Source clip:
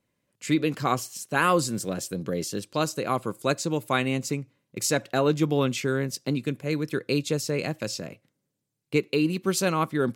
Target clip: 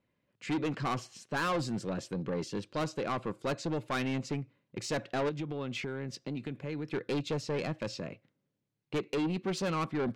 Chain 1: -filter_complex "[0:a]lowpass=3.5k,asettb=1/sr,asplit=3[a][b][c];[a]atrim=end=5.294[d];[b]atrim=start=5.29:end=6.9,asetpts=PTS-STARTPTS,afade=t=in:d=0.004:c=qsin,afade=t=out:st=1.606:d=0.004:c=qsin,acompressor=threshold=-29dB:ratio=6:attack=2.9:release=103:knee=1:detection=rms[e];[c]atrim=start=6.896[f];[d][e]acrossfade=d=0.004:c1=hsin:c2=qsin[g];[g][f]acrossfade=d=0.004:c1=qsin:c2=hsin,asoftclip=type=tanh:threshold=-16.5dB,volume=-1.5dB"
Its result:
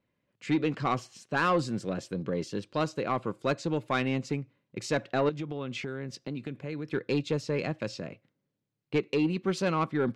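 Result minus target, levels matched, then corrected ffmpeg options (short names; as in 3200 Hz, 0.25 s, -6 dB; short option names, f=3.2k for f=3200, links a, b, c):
soft clip: distortion -9 dB
-filter_complex "[0:a]lowpass=3.5k,asettb=1/sr,asplit=3[a][b][c];[a]atrim=end=5.294[d];[b]atrim=start=5.29:end=6.9,asetpts=PTS-STARTPTS,afade=t=in:d=0.004:c=qsin,afade=t=out:st=1.606:d=0.004:c=qsin,acompressor=threshold=-29dB:ratio=6:attack=2.9:release=103:knee=1:detection=rms[e];[c]atrim=start=6.896[f];[d][e]acrossfade=d=0.004:c1=hsin:c2=qsin[g];[g][f]acrossfade=d=0.004:c1=qsin:c2=hsin,asoftclip=type=tanh:threshold=-26dB,volume=-1.5dB"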